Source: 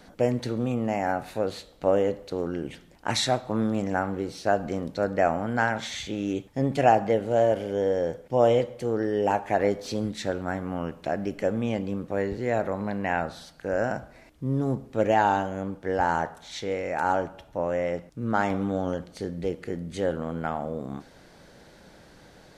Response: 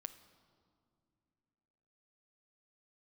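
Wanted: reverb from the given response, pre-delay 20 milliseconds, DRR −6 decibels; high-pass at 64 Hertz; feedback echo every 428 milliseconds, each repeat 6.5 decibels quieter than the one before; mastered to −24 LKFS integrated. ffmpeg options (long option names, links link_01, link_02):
-filter_complex "[0:a]highpass=64,aecho=1:1:428|856|1284|1712|2140|2568:0.473|0.222|0.105|0.0491|0.0231|0.0109,asplit=2[link_01][link_02];[1:a]atrim=start_sample=2205,adelay=20[link_03];[link_02][link_03]afir=irnorm=-1:irlink=0,volume=10.5dB[link_04];[link_01][link_04]amix=inputs=2:normalize=0,volume=-5dB"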